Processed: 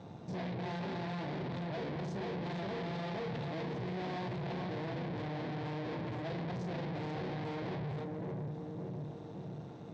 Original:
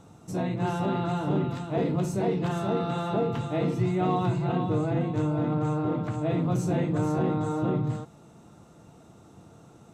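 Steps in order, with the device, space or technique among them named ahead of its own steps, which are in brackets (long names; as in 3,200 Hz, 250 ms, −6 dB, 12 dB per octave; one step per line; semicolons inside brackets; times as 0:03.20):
analogue delay pedal into a guitar amplifier (bucket-brigade delay 564 ms, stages 2,048, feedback 52%, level −12 dB; tube saturation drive 44 dB, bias 0.65; loudspeaker in its box 94–4,400 Hz, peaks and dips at 290 Hz −4 dB, 1,300 Hz −10 dB, 2,800 Hz −5 dB)
level +7.5 dB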